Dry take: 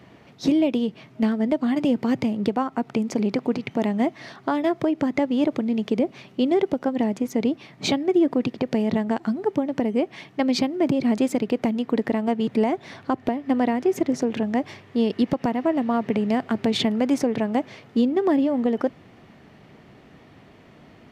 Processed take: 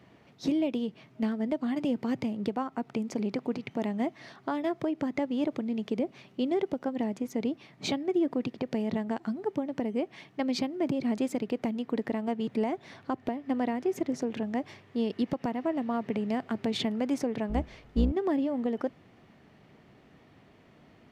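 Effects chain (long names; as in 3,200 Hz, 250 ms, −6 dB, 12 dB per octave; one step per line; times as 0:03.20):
0:17.49–0:18.12: sub-octave generator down 2 octaves, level +2 dB
level −8 dB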